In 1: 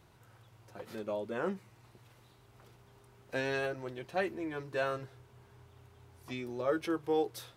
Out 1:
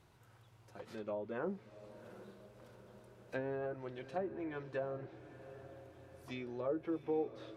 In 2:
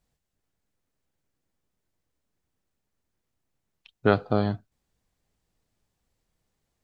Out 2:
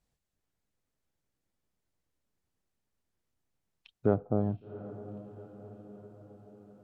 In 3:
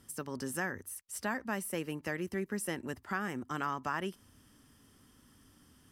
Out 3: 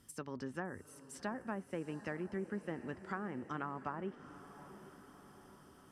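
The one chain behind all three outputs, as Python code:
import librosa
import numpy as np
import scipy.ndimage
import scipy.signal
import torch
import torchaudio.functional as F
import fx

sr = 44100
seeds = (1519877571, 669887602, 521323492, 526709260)

y = fx.env_lowpass_down(x, sr, base_hz=630.0, full_db=-29.0)
y = fx.echo_diffused(y, sr, ms=756, feedback_pct=58, wet_db=-14.0)
y = F.gain(torch.from_numpy(y), -4.0).numpy()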